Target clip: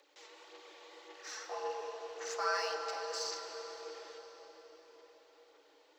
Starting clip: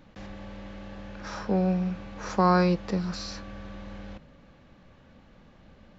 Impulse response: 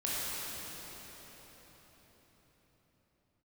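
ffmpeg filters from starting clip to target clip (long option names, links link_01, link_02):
-filter_complex "[0:a]afreqshift=280,aderivative,aphaser=in_gain=1:out_gain=1:delay=4.6:decay=0.56:speed=1.8:type=sinusoidal,asplit=2[link_01][link_02];[link_02]equalizer=frequency=500:width_type=o:width=1:gain=10,equalizer=frequency=1000:width_type=o:width=1:gain=7,equalizer=frequency=4000:width_type=o:width=1:gain=5[link_03];[1:a]atrim=start_sample=2205,lowshelf=frequency=420:gain=7[link_04];[link_03][link_04]afir=irnorm=-1:irlink=0,volume=-14dB[link_05];[link_01][link_05]amix=inputs=2:normalize=0,volume=-1.5dB"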